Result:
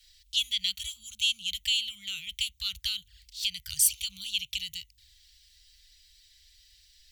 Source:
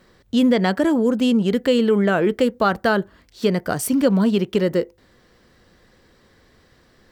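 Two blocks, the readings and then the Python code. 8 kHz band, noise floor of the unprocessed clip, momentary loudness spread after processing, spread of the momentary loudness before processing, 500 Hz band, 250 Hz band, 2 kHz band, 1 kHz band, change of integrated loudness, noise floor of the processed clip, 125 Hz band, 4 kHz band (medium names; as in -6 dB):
+5.0 dB, -57 dBFS, 12 LU, 7 LU, under -40 dB, under -40 dB, -11.5 dB, under -40 dB, -10.0 dB, -64 dBFS, -28.5 dB, +5.0 dB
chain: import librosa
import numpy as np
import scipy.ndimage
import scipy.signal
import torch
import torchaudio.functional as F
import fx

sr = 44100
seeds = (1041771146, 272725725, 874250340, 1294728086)

y = fx.env_flanger(x, sr, rest_ms=5.4, full_db=-18.0)
y = scipy.signal.sosfilt(scipy.signal.cheby2(4, 80, [270.0, 760.0], 'bandstop', fs=sr, output='sos'), y)
y = fx.low_shelf(y, sr, hz=98.0, db=-10.0)
y = y * 10.0 ** (8.0 / 20.0)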